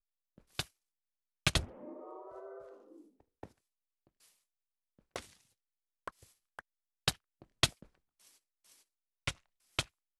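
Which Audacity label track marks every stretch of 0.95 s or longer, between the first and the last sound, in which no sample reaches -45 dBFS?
3.450000	5.160000	silence
7.830000	9.270000	silence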